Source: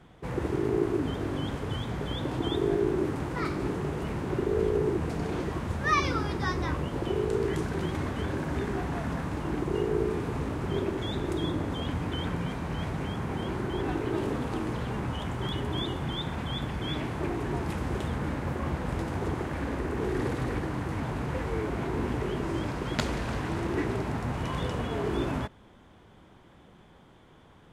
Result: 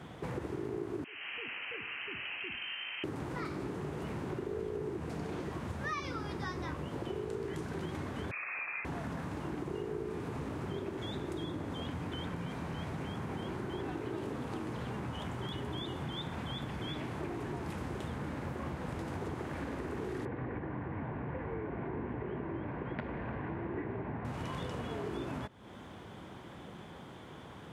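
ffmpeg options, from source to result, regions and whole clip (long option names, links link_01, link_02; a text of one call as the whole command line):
ffmpeg -i in.wav -filter_complex "[0:a]asettb=1/sr,asplit=3[link_01][link_02][link_03];[link_01]atrim=end=1.044[link_04];[link_02]atrim=start=1.04:end=3.04,asetpts=PTS-STARTPTS,afade=type=in:duration=0.004:curve=qsin,afade=type=out:start_time=1.996:duration=0.004:curve=qsin,highpass=frequency=680:width=0.5412,highpass=frequency=680:width=1.3066,lowpass=frequency=3000:width_type=q:width=0.5098,lowpass=frequency=3000:width_type=q:width=0.6013,lowpass=frequency=3000:width_type=q:width=0.9,lowpass=frequency=3000:width_type=q:width=2.563,afreqshift=-3500[link_05];[link_03]atrim=start=3.036[link_06];[link_04][link_05]acrossfade=duration=0.004:curve1=hsin:curve2=qsin[link_07];[link_07][link_06]acrossfade=duration=0.004:curve1=qsin:curve2=hsin,asettb=1/sr,asplit=3[link_08][link_09][link_10];[link_08]atrim=end=8.314[link_11];[link_09]atrim=start=8.31:end=8.85,asetpts=PTS-STARTPTS,afade=type=in:duration=0.004:curve=qsin,afade=type=out:start_time=0.536:duration=0.004:curve=qsin,highpass=330,lowpass=frequency=2400:width_type=q:width=0.5098,lowpass=frequency=2400:width_type=q:width=0.6013,lowpass=frequency=2400:width_type=q:width=0.9,lowpass=frequency=2400:width_type=q:width=2.563,afreqshift=-2800[link_12];[link_10]atrim=start=8.846[link_13];[link_11][link_12]acrossfade=duration=0.004:curve1=hsin:curve2=qsin[link_14];[link_14][link_13]acrossfade=duration=0.004:curve1=qsin:curve2=hsin,asettb=1/sr,asplit=3[link_15][link_16][link_17];[link_15]atrim=end=20.254[link_18];[link_16]atrim=start=20.25:end=24.25,asetpts=PTS-STARTPTS,afade=type=in:duration=0.004:curve=qsin,afade=type=out:start_time=3.996:duration=0.004:curve=qsin,lowpass=frequency=2200:width=0.5412,lowpass=frequency=2200:width=1.3066,bandreject=frequency=1300:width=8.9[link_19];[link_17]atrim=start=24.246[link_20];[link_18][link_19]acrossfade=duration=0.004:curve1=hsin:curve2=qsin[link_21];[link_21][link_20]acrossfade=duration=0.004:curve1=qsin:curve2=hsin,highpass=81,acompressor=threshold=-46dB:ratio=4,volume=7dB" out.wav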